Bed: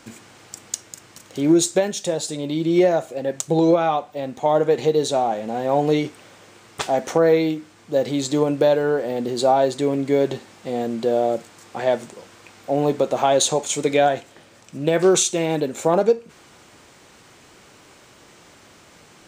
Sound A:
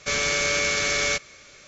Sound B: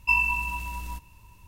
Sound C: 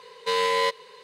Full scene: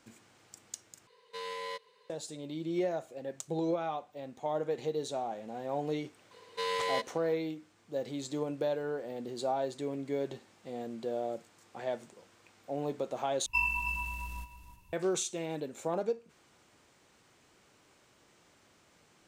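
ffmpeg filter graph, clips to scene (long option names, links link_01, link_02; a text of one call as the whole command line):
ffmpeg -i bed.wav -i cue0.wav -i cue1.wav -i cue2.wav -filter_complex "[3:a]asplit=2[link_01][link_02];[0:a]volume=-15.5dB[link_03];[2:a]aecho=1:1:318:0.282[link_04];[link_03]asplit=3[link_05][link_06][link_07];[link_05]atrim=end=1.074[link_08];[link_01]atrim=end=1.03,asetpts=PTS-STARTPTS,volume=-16.5dB[link_09];[link_06]atrim=start=2.096:end=13.464[link_10];[link_04]atrim=end=1.47,asetpts=PTS-STARTPTS,volume=-7.5dB[link_11];[link_07]atrim=start=14.926[link_12];[link_02]atrim=end=1.03,asetpts=PTS-STARTPTS,volume=-9.5dB,afade=type=in:duration=0.004:curve=hsin,afade=type=out:start_time=1.026:duration=0.004:curve=hsin,adelay=6310[link_13];[link_08][link_09]acrossfade=duration=0.004:curve1=hsin:curve2=hsin[link_14];[link_14][link_10]acrossfade=duration=0.004:curve1=hsin:curve2=hsin[link_15];[link_15][link_11]acrossfade=duration=0.004:curve1=hsin:curve2=hsin[link_16];[link_16][link_12]acrossfade=duration=0.004:curve1=hsin:curve2=hsin[link_17];[link_17][link_13]amix=inputs=2:normalize=0" out.wav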